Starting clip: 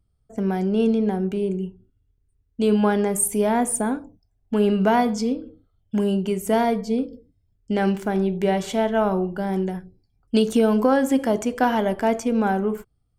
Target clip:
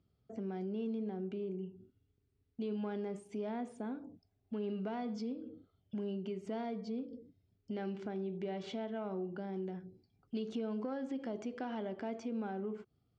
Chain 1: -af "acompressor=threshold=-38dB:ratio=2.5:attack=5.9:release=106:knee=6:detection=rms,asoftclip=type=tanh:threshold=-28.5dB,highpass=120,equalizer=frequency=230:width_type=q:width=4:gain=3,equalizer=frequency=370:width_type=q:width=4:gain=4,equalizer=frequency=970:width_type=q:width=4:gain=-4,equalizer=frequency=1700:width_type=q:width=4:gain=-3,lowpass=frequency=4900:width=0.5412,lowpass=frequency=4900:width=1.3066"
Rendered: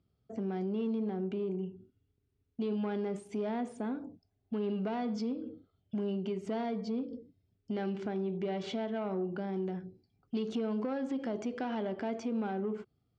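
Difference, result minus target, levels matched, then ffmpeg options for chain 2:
downward compressor: peak gain reduction −6 dB
-af "acompressor=threshold=-48dB:ratio=2.5:attack=5.9:release=106:knee=6:detection=rms,asoftclip=type=tanh:threshold=-28.5dB,highpass=120,equalizer=frequency=230:width_type=q:width=4:gain=3,equalizer=frequency=370:width_type=q:width=4:gain=4,equalizer=frequency=970:width_type=q:width=4:gain=-4,equalizer=frequency=1700:width_type=q:width=4:gain=-3,lowpass=frequency=4900:width=0.5412,lowpass=frequency=4900:width=1.3066"

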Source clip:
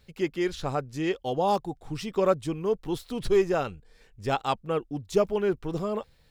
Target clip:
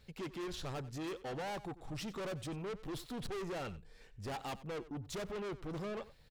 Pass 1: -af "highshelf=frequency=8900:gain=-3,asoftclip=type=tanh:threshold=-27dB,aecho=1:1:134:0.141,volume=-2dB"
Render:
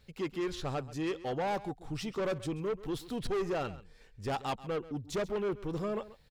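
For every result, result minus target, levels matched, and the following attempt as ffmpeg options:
echo 42 ms late; soft clipping: distortion −5 dB
-af "highshelf=frequency=8900:gain=-3,asoftclip=type=tanh:threshold=-27dB,aecho=1:1:92:0.141,volume=-2dB"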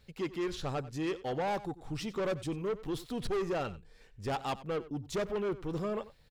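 soft clipping: distortion −5 dB
-af "highshelf=frequency=8900:gain=-3,asoftclip=type=tanh:threshold=-37dB,aecho=1:1:92:0.141,volume=-2dB"

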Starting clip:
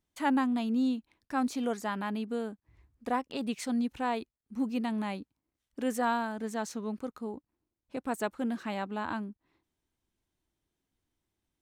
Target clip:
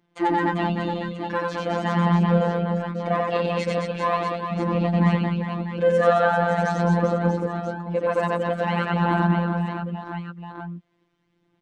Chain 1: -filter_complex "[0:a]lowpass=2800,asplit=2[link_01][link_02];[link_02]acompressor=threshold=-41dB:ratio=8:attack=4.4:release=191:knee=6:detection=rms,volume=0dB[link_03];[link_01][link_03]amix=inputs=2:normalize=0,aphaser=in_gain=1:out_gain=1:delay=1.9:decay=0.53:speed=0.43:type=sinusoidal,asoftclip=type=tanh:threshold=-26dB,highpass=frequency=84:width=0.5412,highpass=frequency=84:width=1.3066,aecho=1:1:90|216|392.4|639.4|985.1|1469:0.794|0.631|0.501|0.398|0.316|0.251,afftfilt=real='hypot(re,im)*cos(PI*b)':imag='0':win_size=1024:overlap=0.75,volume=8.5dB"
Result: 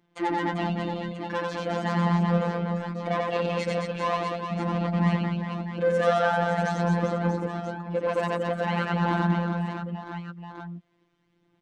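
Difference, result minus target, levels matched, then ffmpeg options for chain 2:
soft clipping: distortion +11 dB; downward compressor: peak gain reduction +5.5 dB
-filter_complex "[0:a]lowpass=2800,asplit=2[link_01][link_02];[link_02]acompressor=threshold=-34.5dB:ratio=8:attack=4.4:release=191:knee=6:detection=rms,volume=0dB[link_03];[link_01][link_03]amix=inputs=2:normalize=0,aphaser=in_gain=1:out_gain=1:delay=1.9:decay=0.53:speed=0.43:type=sinusoidal,asoftclip=type=tanh:threshold=-16dB,highpass=frequency=84:width=0.5412,highpass=frequency=84:width=1.3066,aecho=1:1:90|216|392.4|639.4|985.1|1469:0.794|0.631|0.501|0.398|0.316|0.251,afftfilt=real='hypot(re,im)*cos(PI*b)':imag='0':win_size=1024:overlap=0.75,volume=8.5dB"

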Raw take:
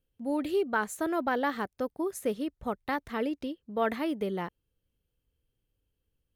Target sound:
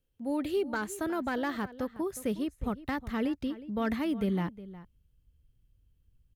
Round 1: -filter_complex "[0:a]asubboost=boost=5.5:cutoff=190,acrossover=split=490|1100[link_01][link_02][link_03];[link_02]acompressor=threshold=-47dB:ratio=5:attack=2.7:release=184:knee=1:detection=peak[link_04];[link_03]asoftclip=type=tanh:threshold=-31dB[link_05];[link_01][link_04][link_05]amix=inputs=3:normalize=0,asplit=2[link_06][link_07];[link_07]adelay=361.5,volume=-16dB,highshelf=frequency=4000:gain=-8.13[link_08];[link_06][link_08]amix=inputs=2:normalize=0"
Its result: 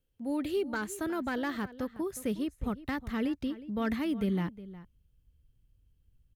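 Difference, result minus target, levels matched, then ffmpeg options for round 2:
downward compressor: peak gain reduction +7.5 dB
-filter_complex "[0:a]asubboost=boost=5.5:cutoff=190,acrossover=split=490|1100[link_01][link_02][link_03];[link_02]acompressor=threshold=-37.5dB:ratio=5:attack=2.7:release=184:knee=1:detection=peak[link_04];[link_03]asoftclip=type=tanh:threshold=-31dB[link_05];[link_01][link_04][link_05]amix=inputs=3:normalize=0,asplit=2[link_06][link_07];[link_07]adelay=361.5,volume=-16dB,highshelf=frequency=4000:gain=-8.13[link_08];[link_06][link_08]amix=inputs=2:normalize=0"

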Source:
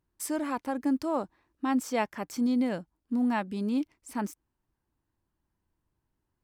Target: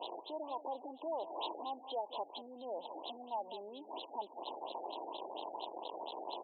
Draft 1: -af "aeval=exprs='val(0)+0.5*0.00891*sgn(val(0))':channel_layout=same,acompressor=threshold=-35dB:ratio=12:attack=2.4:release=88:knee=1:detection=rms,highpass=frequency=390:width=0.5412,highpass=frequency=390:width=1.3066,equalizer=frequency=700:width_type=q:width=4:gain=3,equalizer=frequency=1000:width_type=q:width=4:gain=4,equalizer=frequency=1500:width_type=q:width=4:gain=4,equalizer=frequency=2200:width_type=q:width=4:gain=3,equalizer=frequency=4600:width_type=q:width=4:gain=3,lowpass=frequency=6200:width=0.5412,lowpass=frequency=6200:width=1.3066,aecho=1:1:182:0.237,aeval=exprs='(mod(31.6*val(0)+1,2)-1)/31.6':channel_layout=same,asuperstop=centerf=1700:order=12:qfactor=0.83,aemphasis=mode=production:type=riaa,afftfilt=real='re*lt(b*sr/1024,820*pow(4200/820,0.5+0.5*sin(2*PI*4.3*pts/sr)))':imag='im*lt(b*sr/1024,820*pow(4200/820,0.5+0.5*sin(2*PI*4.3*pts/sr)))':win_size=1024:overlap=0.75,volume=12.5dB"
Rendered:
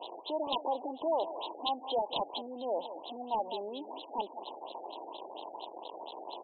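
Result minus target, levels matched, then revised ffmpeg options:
downward compressor: peak gain reduction −8.5 dB
-af "aeval=exprs='val(0)+0.5*0.00891*sgn(val(0))':channel_layout=same,acompressor=threshold=-44.5dB:ratio=12:attack=2.4:release=88:knee=1:detection=rms,highpass=frequency=390:width=0.5412,highpass=frequency=390:width=1.3066,equalizer=frequency=700:width_type=q:width=4:gain=3,equalizer=frequency=1000:width_type=q:width=4:gain=4,equalizer=frequency=1500:width_type=q:width=4:gain=4,equalizer=frequency=2200:width_type=q:width=4:gain=3,equalizer=frequency=4600:width_type=q:width=4:gain=3,lowpass=frequency=6200:width=0.5412,lowpass=frequency=6200:width=1.3066,aecho=1:1:182:0.237,aeval=exprs='(mod(31.6*val(0)+1,2)-1)/31.6':channel_layout=same,asuperstop=centerf=1700:order=12:qfactor=0.83,aemphasis=mode=production:type=riaa,afftfilt=real='re*lt(b*sr/1024,820*pow(4200/820,0.5+0.5*sin(2*PI*4.3*pts/sr)))':imag='im*lt(b*sr/1024,820*pow(4200/820,0.5+0.5*sin(2*PI*4.3*pts/sr)))':win_size=1024:overlap=0.75,volume=12.5dB"

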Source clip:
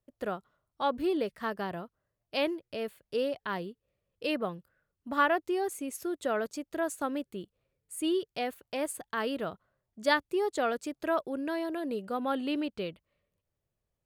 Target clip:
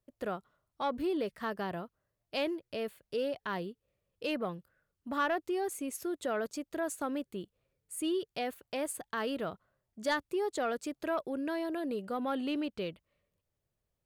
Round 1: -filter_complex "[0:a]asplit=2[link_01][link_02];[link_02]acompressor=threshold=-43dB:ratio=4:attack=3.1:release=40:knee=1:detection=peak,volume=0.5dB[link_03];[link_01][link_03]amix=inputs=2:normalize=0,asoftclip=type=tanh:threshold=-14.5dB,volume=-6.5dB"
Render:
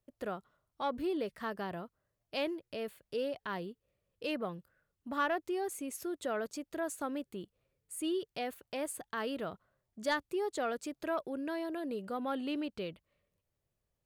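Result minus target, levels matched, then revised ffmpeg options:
downward compressor: peak gain reduction +8 dB
-filter_complex "[0:a]asplit=2[link_01][link_02];[link_02]acompressor=threshold=-32.5dB:ratio=4:attack=3.1:release=40:knee=1:detection=peak,volume=0.5dB[link_03];[link_01][link_03]amix=inputs=2:normalize=0,asoftclip=type=tanh:threshold=-14.5dB,volume=-6.5dB"

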